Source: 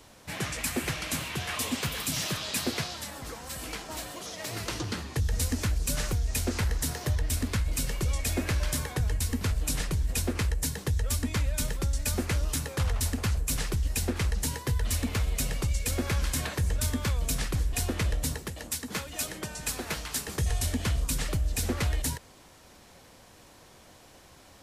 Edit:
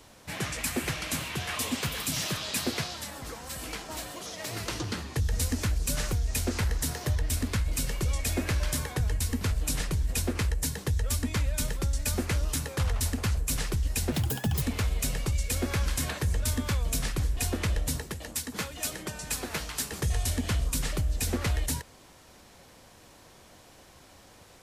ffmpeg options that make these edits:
ffmpeg -i in.wav -filter_complex "[0:a]asplit=3[link_01][link_02][link_03];[link_01]atrim=end=14.124[link_04];[link_02]atrim=start=14.12:end=14.98,asetpts=PTS-STARTPTS,asetrate=75852,aresample=44100[link_05];[link_03]atrim=start=14.976[link_06];[link_04][link_05]acrossfade=duration=0.004:curve1=hsin:curve2=hsin[link_07];[link_07][link_06]acrossfade=duration=0.004:curve1=hsin:curve2=hsin" out.wav

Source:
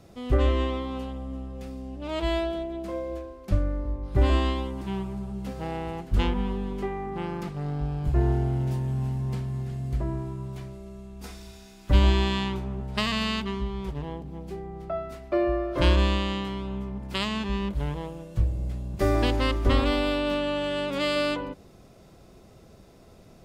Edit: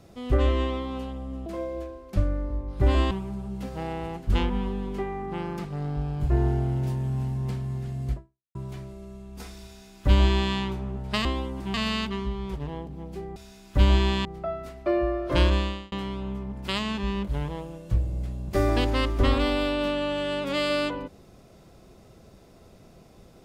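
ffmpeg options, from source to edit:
ffmpeg -i in.wav -filter_complex "[0:a]asplit=9[link_01][link_02][link_03][link_04][link_05][link_06][link_07][link_08][link_09];[link_01]atrim=end=1.462[link_10];[link_02]atrim=start=2.808:end=4.462[link_11];[link_03]atrim=start=4.948:end=10.39,asetpts=PTS-STARTPTS,afade=type=out:start_time=5.022:duration=0.42:curve=exp[link_12];[link_04]atrim=start=10.39:end=13.092,asetpts=PTS-STARTPTS,afade=type=in:duration=0.004:curve=hsin[link_13];[link_05]atrim=start=4.458:end=4.952[link_14];[link_06]atrim=start=13.088:end=14.712[link_15];[link_07]atrim=start=11.498:end=12.392[link_16];[link_08]atrim=start=14.708:end=16.38,asetpts=PTS-STARTPTS,afade=type=out:start_time=1.082:duration=0.59:curve=qsin[link_17];[link_09]atrim=start=16.38,asetpts=PTS-STARTPTS,afade=type=in:duration=0.004:curve=hsin[link_18];[link_10][link_11]acrossfade=duration=0.004:curve1=hsin:curve2=hsin[link_19];[link_12][link_13]concat=n=2:v=0:a=1[link_20];[link_19][link_20]acrossfade=duration=0.004:curve1=hsin:curve2=hsin[link_21];[link_21][link_14]acrossfade=duration=0.004:curve1=hsin:curve2=hsin[link_22];[link_22][link_15]acrossfade=duration=0.004:curve1=hsin:curve2=hsin[link_23];[link_23][link_16]acrossfade=duration=0.004:curve1=hsin:curve2=hsin[link_24];[link_17][link_18]concat=n=2:v=0:a=1[link_25];[link_24][link_25]acrossfade=duration=0.004:curve1=hsin:curve2=hsin" out.wav

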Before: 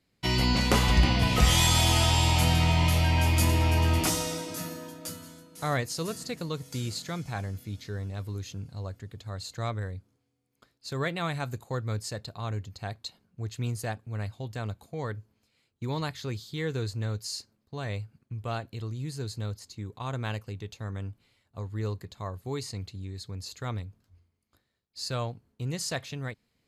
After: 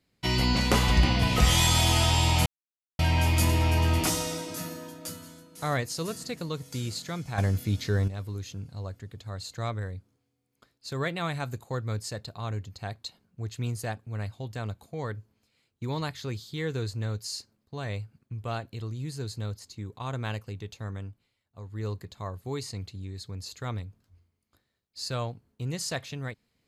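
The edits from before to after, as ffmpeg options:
ffmpeg -i in.wav -filter_complex "[0:a]asplit=7[link_01][link_02][link_03][link_04][link_05][link_06][link_07];[link_01]atrim=end=2.46,asetpts=PTS-STARTPTS,afade=type=out:start_time=2.456:duration=0.004:curve=hsin[link_08];[link_02]atrim=start=2.46:end=2.99,asetpts=PTS-STARTPTS,volume=0[link_09];[link_03]atrim=start=2.99:end=7.382,asetpts=PTS-STARTPTS,afade=type=in:duration=0.004:curve=hsin[link_10];[link_04]atrim=start=7.378:end=8.082,asetpts=PTS-STARTPTS,volume=9.5dB[link_11];[link_05]atrim=start=8.078:end=21.32,asetpts=PTS-STARTPTS,afade=type=out:start_time=12.802:duration=0.44:silence=0.316228[link_12];[link_06]atrim=start=21.32:end=21.5,asetpts=PTS-STARTPTS,volume=-10dB[link_13];[link_07]atrim=start=21.5,asetpts=PTS-STARTPTS,afade=type=in:duration=0.44:silence=0.316228[link_14];[link_08][link_09][link_10]concat=n=3:v=0:a=1[link_15];[link_15][link_11]acrossfade=duration=0.004:curve1=hsin:curve2=hsin[link_16];[link_12][link_13][link_14]concat=n=3:v=0:a=1[link_17];[link_16][link_17]acrossfade=duration=0.004:curve1=hsin:curve2=hsin" out.wav

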